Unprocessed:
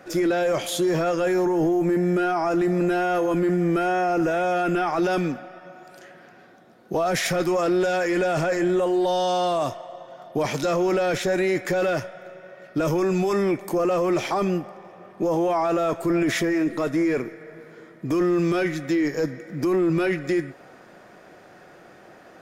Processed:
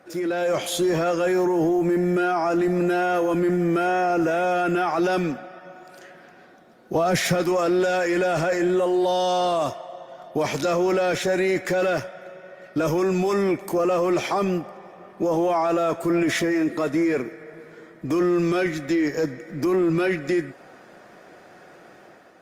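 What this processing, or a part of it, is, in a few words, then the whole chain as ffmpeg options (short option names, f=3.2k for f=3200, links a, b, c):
video call: -filter_complex "[0:a]asettb=1/sr,asplit=3[a][b][c];[a]atrim=end=6.954[d];[b]atrim=start=6.95:end=7.35,asetpts=PTS-STARTPTS,afade=t=in:d=0.004:c=qsin,afade=t=out:st=0.396:d=0.004:c=qsin,lowshelf=f=190:g=11[e];[c]atrim=start=7.346[f];[d][e]acrossfade=d=0.004:c1=hsin:c2=qsin[g];[g][f]acrossfade=d=0.004:c1=qsin:c2=hsin,highpass=f=120:p=1,dynaudnorm=f=110:g=7:m=5.5dB,volume=-4.5dB" -ar 48000 -c:a libopus -b:a 32k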